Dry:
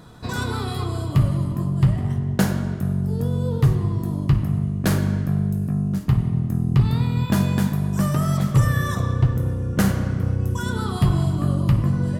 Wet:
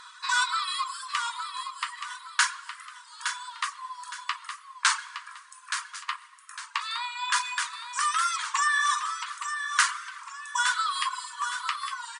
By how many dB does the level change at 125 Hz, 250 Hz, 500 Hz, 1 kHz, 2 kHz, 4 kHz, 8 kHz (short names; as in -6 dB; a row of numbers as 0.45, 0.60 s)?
under -40 dB, under -40 dB, under -40 dB, +4.5 dB, +6.5 dB, +6.5 dB, +6.5 dB